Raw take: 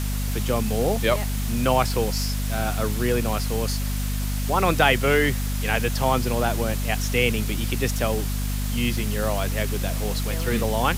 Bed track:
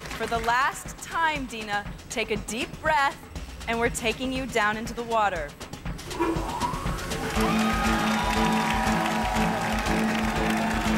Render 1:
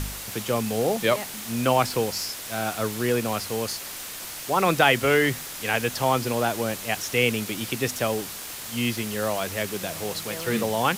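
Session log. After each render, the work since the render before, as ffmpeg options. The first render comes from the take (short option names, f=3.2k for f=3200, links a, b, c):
-af "bandreject=f=50:t=h:w=4,bandreject=f=100:t=h:w=4,bandreject=f=150:t=h:w=4,bandreject=f=200:t=h:w=4,bandreject=f=250:t=h:w=4"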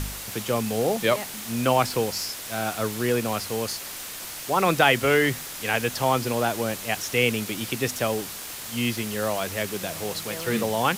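-af anull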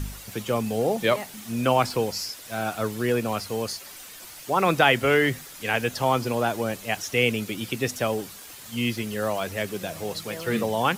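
-af "afftdn=nr=9:nf=-37"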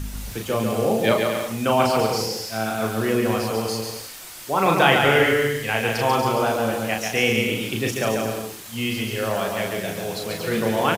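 -filter_complex "[0:a]asplit=2[a][b];[b]adelay=36,volume=-4dB[c];[a][c]amix=inputs=2:normalize=0,asplit=2[d][e];[e]aecho=0:1:140|238|306.6|354.6|388.2:0.631|0.398|0.251|0.158|0.1[f];[d][f]amix=inputs=2:normalize=0"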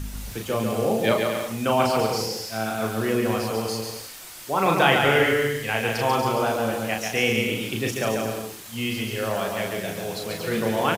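-af "volume=-2dB"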